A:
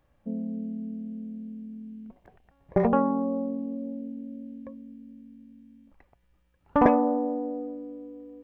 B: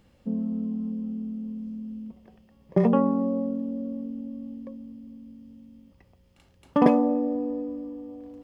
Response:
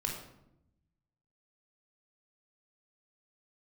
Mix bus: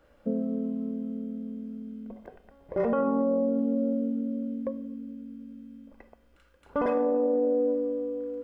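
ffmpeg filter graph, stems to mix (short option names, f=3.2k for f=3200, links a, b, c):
-filter_complex "[0:a]acompressor=threshold=-30dB:ratio=3,adynamicequalizer=threshold=0.00355:dfrequency=2200:dqfactor=0.7:tfrequency=2200:tqfactor=0.7:attack=5:release=100:ratio=0.375:range=2:mode=boostabove:tftype=highshelf,volume=2dB,asplit=2[a][b];[b]volume=-15dB[c];[1:a]highpass=f=1.4k:t=q:w=6.3,volume=-1,volume=-12dB,asplit=2[d][e];[e]volume=-3.5dB[f];[2:a]atrim=start_sample=2205[g];[c][f]amix=inputs=2:normalize=0[h];[h][g]afir=irnorm=-1:irlink=0[i];[a][d][i]amix=inputs=3:normalize=0,equalizer=f=125:t=o:w=1:g=-8,equalizer=f=250:t=o:w=1:g=5,equalizer=f=500:t=o:w=1:g=9,alimiter=limit=-18.5dB:level=0:latency=1:release=19"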